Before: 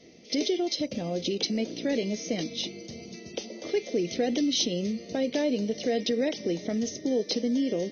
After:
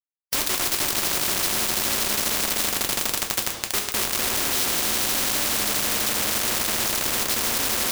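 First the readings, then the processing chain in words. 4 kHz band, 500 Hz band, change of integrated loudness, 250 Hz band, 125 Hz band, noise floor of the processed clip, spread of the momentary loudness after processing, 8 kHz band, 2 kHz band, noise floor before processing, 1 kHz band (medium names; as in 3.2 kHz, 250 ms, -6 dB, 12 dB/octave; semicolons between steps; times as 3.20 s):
+8.0 dB, -5.0 dB, +7.5 dB, -7.5 dB, +1.0 dB, -35 dBFS, 3 LU, no reading, +13.5 dB, -46 dBFS, +12.5 dB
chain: echo with a slow build-up 82 ms, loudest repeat 5, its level -8.5 dB; bit crusher 4-bit; two-slope reverb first 0.24 s, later 1.8 s, from -20 dB, DRR 2.5 dB; spectrum-flattening compressor 4:1; trim +6 dB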